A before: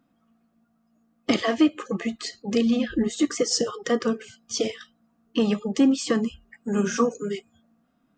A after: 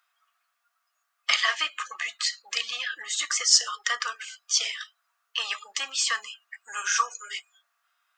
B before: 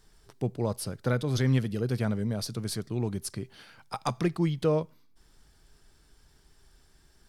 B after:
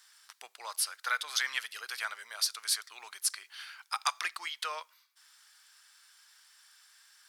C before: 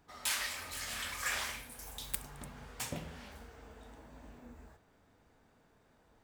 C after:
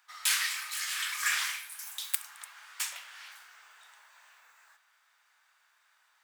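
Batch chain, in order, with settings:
high-pass filter 1,200 Hz 24 dB per octave
level +7 dB

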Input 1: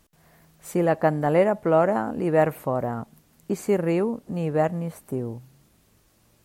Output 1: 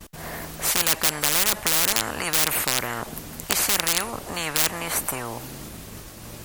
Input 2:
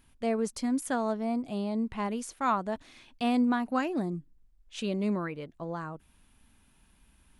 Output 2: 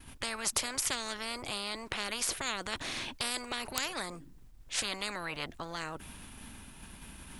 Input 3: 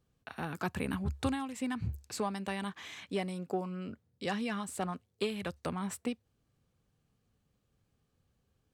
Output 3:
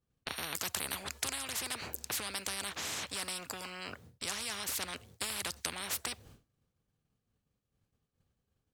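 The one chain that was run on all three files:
in parallel at −11 dB: wrap-around overflow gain 16 dB
on the sum: downward expander −56 dBFS
every bin compressed towards the loudest bin 10 to 1
level +5.5 dB

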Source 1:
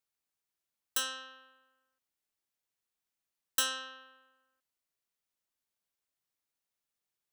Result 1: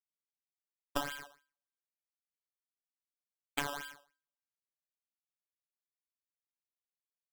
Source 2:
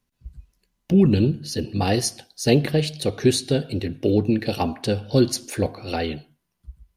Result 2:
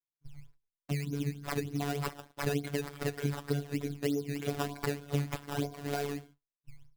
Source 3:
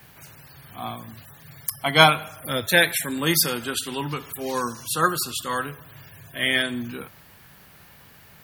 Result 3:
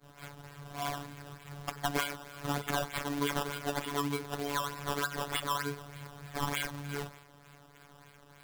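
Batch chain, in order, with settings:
downward expander −44 dBFS
EQ curve with evenly spaced ripples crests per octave 1.7, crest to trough 17 dB
downward compressor 10 to 1, threshold −25 dBFS
sample-and-hold swept by an LFO 14×, swing 100% 3.3 Hz
phases set to zero 143 Hz
level −2.5 dB

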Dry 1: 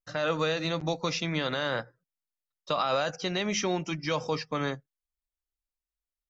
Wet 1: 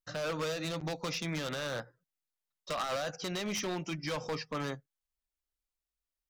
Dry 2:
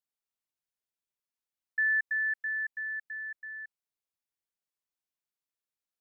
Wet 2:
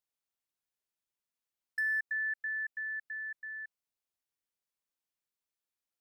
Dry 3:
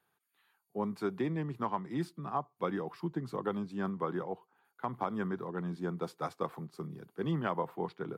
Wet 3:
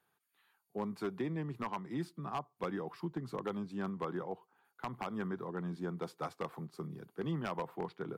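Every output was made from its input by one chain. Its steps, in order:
in parallel at +1 dB: downward compressor 6 to 1, threshold −37 dBFS
on the sum: wave folding −21 dBFS
level −7 dB

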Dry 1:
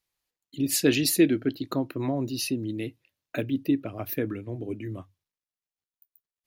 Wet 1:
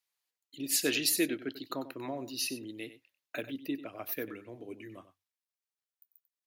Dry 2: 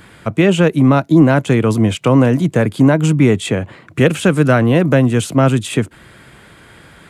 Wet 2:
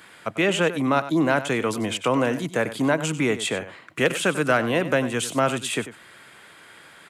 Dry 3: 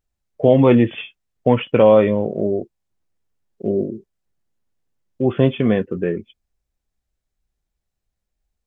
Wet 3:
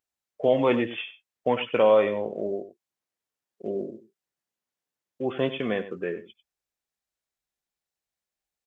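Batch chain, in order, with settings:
high-pass filter 770 Hz 6 dB per octave
hard clipping −6 dBFS
on a send: single-tap delay 95 ms −13.5 dB
on the sum: level −2.5 dB

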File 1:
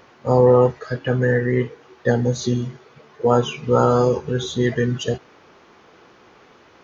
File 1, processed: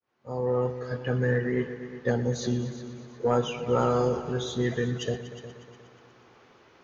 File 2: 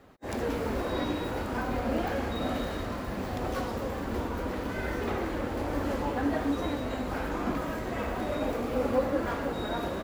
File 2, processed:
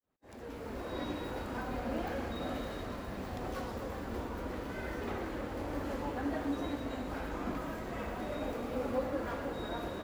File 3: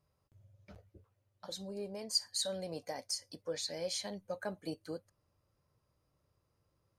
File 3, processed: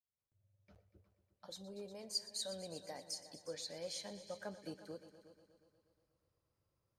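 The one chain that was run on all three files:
fade in at the beginning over 1.10 s
soft clipping −5 dBFS
echo machine with several playback heads 120 ms, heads all three, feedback 47%, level −17 dB
level −7 dB

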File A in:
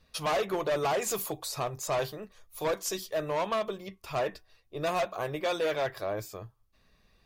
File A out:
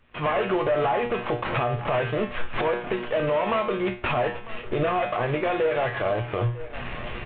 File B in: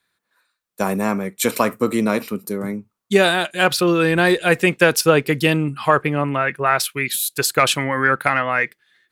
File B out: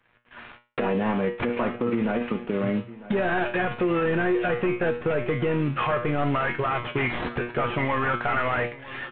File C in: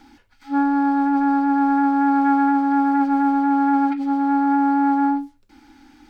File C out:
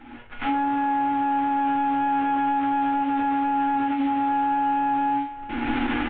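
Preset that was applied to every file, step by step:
variable-slope delta modulation 16 kbit/s
camcorder AGC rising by 46 dB per second
tuned comb filter 120 Hz, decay 0.32 s, harmonics all, mix 80%
on a send: repeating echo 949 ms, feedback 27%, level −24 dB
on the sum: brickwall limiter −23 dBFS
in parallel at +2 dB: downward compressor, threshold −39 dBFS
on the sum: level +4 dB

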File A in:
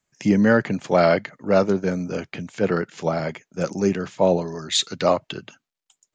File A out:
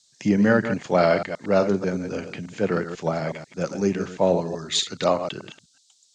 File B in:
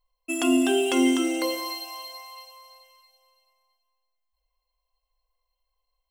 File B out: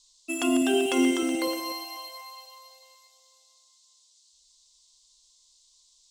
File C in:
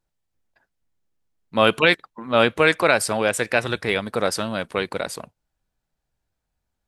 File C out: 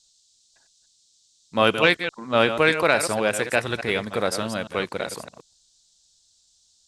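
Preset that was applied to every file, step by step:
delay that plays each chunk backwards 123 ms, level −9 dB
harmonic generator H 3 −27 dB, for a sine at −0.5 dBFS
noise in a band 3,600–8,000 Hz −61 dBFS
level −1 dB

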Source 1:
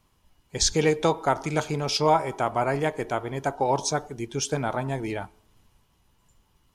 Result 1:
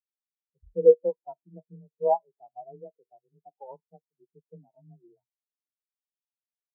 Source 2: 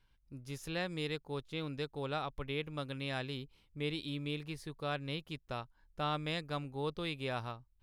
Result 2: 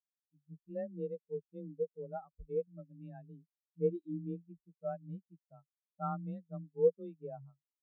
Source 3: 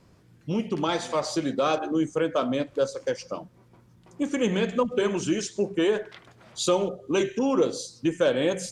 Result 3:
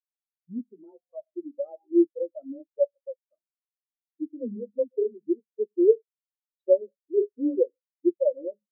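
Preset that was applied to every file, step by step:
frequency shifter +22 Hz
treble cut that deepens with the level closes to 1,000 Hz, closed at −24 dBFS
every bin expanded away from the loudest bin 4 to 1
level +3.5 dB

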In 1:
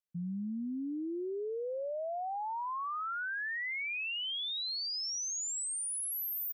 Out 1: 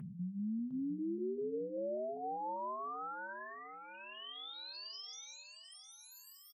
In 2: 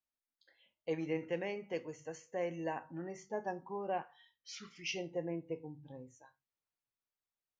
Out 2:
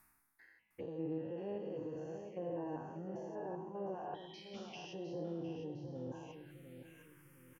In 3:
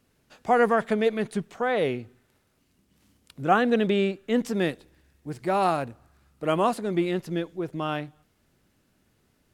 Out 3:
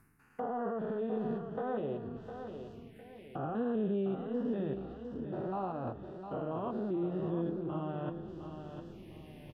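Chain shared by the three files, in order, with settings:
spectrum averaged block by block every 200 ms
flat-topped bell 5,500 Hz −10 dB 1.3 octaves
reversed playback
upward compression, threshold −34 dBFS
reversed playback
brickwall limiter −24.5 dBFS
flanger 0.31 Hz, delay 5.9 ms, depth 9.5 ms, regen −49%
on a send: repeating echo 707 ms, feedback 44%, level −9 dB
on the sum: phaser swept by the level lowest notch 490 Hz, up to 2,200 Hz, full sweep at −44 dBFS
treble cut that deepens with the level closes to 2,700 Hz, closed at −38 dBFS
level +2 dB

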